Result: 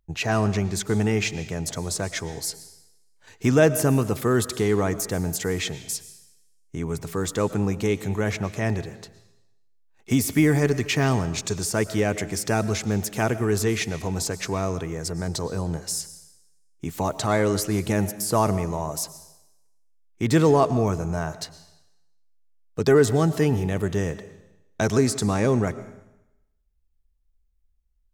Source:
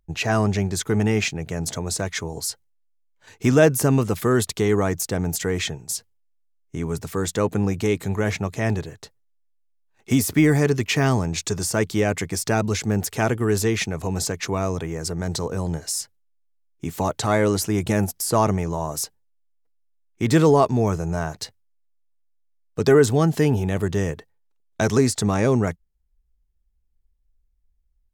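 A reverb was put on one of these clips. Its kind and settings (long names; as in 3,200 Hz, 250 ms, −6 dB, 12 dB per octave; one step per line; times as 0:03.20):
comb and all-pass reverb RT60 0.9 s, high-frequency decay 1×, pre-delay 75 ms, DRR 14 dB
level −2 dB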